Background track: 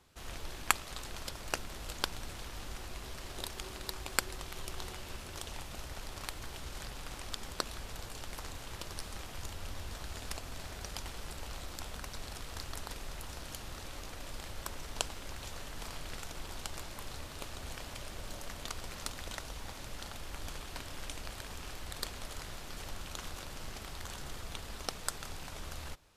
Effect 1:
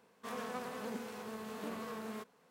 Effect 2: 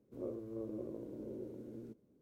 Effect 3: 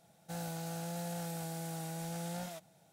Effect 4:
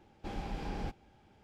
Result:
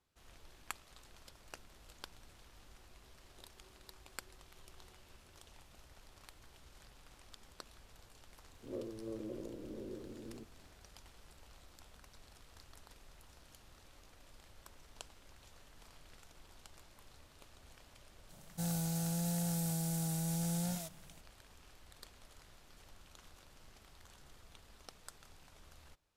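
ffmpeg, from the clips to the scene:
-filter_complex "[0:a]volume=0.158[s0];[3:a]bass=f=250:g=12,treble=f=4000:g=11[s1];[2:a]atrim=end=2.21,asetpts=PTS-STARTPTS,volume=0.891,afade=t=in:d=0.004:c=hsin,afade=t=out:st=2.206:d=0.004:c=hsin,adelay=8510[s2];[s1]atrim=end=2.92,asetpts=PTS-STARTPTS,volume=0.631,afade=t=in:d=0.004:c=hsin,afade=t=out:st=2.916:d=0.004:c=hsin,adelay=18290[s3];[s0][s2][s3]amix=inputs=3:normalize=0"

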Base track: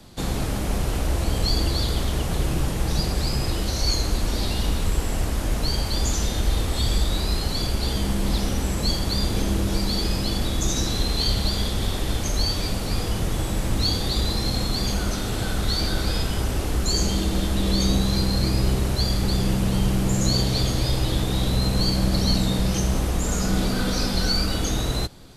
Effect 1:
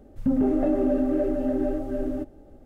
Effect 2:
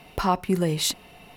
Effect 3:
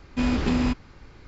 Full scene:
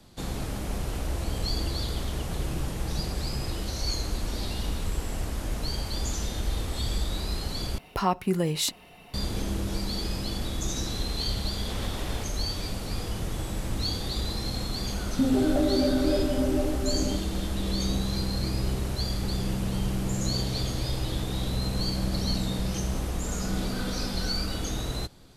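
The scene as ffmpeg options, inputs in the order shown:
-filter_complex "[0:a]volume=0.447[s0];[3:a]aeval=exprs='0.0473*(abs(mod(val(0)/0.0473+3,4)-2)-1)':c=same[s1];[s0]asplit=2[s2][s3];[s2]atrim=end=7.784[s4];[2:a]atrim=end=1.36,asetpts=PTS-STARTPTS,volume=0.75[s5];[s3]atrim=start=9.136[s6];[s1]atrim=end=1.27,asetpts=PTS-STARTPTS,volume=0.355,afade=t=in:d=0.004:c=hsin,afade=t=out:st=1.266:d=0.004:c=hsin,adelay=11510[s7];[1:a]atrim=end=2.65,asetpts=PTS-STARTPTS,volume=0.841,afade=t=in:d=0.004:c=hsin,afade=t=out:st=2.646:d=0.004:c=hsin,adelay=14930[s8];[s4][s5]acrossfade=d=0.004:c1=hsin:c2=hsin[s9];[s9][s6]acrossfade=d=0.004:c1=hsin:c2=hsin[s10];[s10][s7][s8]amix=inputs=3:normalize=0"

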